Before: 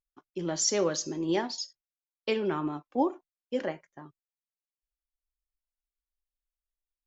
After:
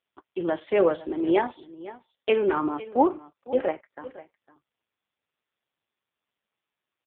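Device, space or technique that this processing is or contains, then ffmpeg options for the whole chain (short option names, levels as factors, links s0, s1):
satellite phone: -af "highpass=330,lowpass=3300,aecho=1:1:506:0.141,volume=2.82" -ar 8000 -c:a libopencore_amrnb -b:a 5150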